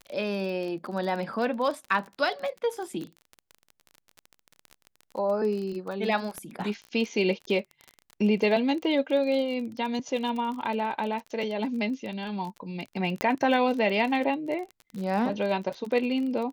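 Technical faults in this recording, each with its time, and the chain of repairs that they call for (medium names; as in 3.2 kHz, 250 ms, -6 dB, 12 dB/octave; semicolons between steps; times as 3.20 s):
crackle 32 per s -33 dBFS
6.38 s: pop -22 dBFS
13.21 s: pop -11 dBFS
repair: de-click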